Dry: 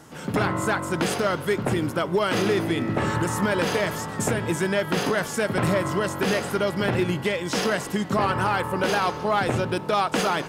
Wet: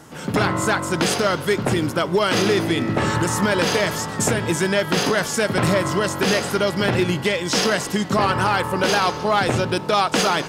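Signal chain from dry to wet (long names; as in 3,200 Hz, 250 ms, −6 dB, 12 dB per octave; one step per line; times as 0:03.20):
dynamic equaliser 5,200 Hz, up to +6 dB, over −46 dBFS, Q 0.85
level +3.5 dB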